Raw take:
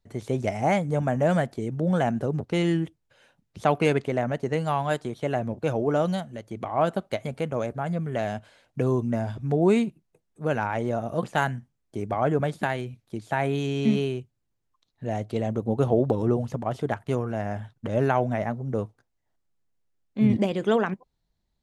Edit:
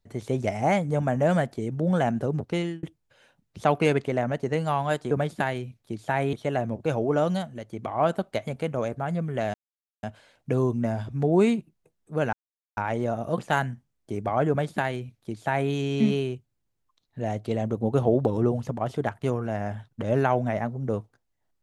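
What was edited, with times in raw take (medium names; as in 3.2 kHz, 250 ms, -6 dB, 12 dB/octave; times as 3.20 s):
2.49–2.83 s: fade out
8.32 s: insert silence 0.49 s
10.62 s: insert silence 0.44 s
12.34–13.56 s: copy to 5.11 s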